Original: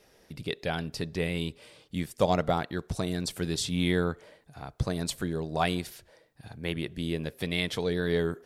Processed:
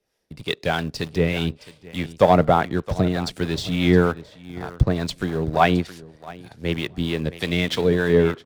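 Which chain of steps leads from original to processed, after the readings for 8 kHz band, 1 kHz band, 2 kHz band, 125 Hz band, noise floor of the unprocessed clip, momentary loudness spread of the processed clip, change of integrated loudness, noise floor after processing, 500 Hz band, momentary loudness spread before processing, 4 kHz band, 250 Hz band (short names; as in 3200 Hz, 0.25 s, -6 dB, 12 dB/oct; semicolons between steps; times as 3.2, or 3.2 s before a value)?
-1.5 dB, +11.0 dB, +8.0 dB, +9.0 dB, -62 dBFS, 17 LU, +9.0 dB, -56 dBFS, +9.5 dB, 14 LU, +5.5 dB, +9.0 dB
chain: treble ducked by the level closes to 2900 Hz, closed at -25 dBFS; on a send: feedback echo 0.668 s, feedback 17%, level -13.5 dB; on the sum: sample leveller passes 1; in parallel at -9.5 dB: sample gate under -30 dBFS; on the sum: harmonic tremolo 3.3 Hz, depth 50%, crossover 540 Hz; three-band expander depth 40%; gain +5 dB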